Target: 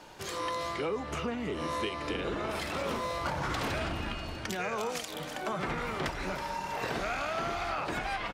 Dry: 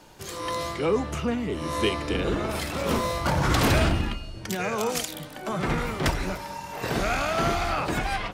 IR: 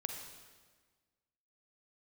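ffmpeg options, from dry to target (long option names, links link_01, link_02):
-af "lowshelf=frequency=340:gain=-8.5,aecho=1:1:323|646|969:0.141|0.0565|0.0226,acompressor=threshold=-34dB:ratio=5,lowpass=frequency=3900:poles=1,volume=3.5dB"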